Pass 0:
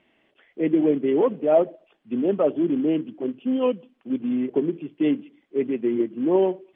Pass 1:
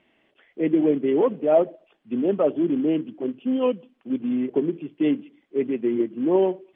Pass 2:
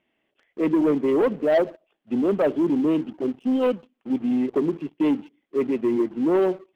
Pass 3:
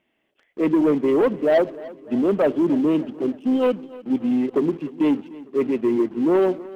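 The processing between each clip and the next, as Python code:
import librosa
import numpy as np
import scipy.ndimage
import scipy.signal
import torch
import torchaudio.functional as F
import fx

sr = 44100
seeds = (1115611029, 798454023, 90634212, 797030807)

y1 = x
y2 = fx.leveller(y1, sr, passes=2)
y2 = y2 * librosa.db_to_amplitude(-5.0)
y3 = fx.echo_feedback(y2, sr, ms=299, feedback_pct=57, wet_db=-19.5)
y3 = y3 * librosa.db_to_amplitude(2.0)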